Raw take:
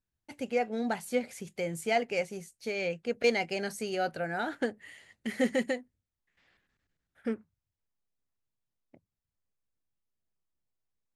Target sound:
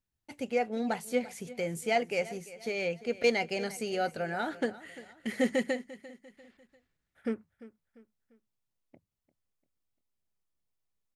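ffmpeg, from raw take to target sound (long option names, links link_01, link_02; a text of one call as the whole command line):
ffmpeg -i in.wav -af "bandreject=frequency=1600:width=22,aecho=1:1:346|692|1038:0.133|0.0547|0.0224" out.wav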